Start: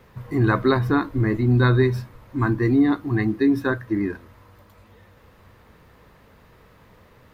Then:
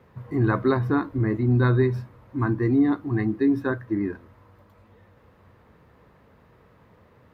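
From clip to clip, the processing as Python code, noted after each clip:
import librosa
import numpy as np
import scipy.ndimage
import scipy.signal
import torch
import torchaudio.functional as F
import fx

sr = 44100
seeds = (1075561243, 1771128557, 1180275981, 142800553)

y = scipy.signal.sosfilt(scipy.signal.butter(2, 64.0, 'highpass', fs=sr, output='sos'), x)
y = fx.high_shelf(y, sr, hz=2500.0, db=-11.0)
y = y * 10.0 ** (-2.0 / 20.0)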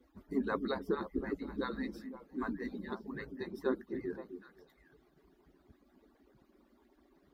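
y = fx.hpss_only(x, sr, part='percussive')
y = fx.band_shelf(y, sr, hz=1300.0, db=-8.5, octaves=2.6)
y = fx.echo_stepped(y, sr, ms=257, hz=270.0, octaves=1.4, feedback_pct=70, wet_db=-6.0)
y = y * 10.0 ** (-2.0 / 20.0)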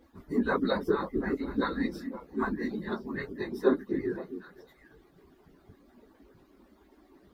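y = fx.phase_scramble(x, sr, seeds[0], window_ms=50)
y = y * 10.0 ** (7.5 / 20.0)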